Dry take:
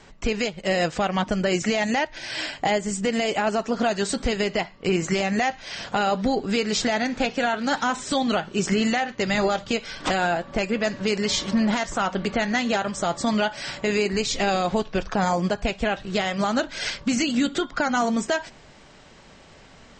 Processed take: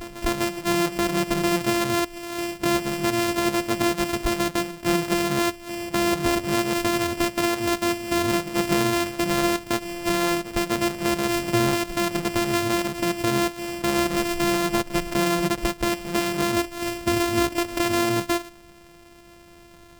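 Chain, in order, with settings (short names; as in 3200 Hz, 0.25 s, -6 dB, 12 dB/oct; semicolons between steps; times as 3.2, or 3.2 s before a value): sample sorter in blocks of 128 samples; pre-echo 0.25 s -13.5 dB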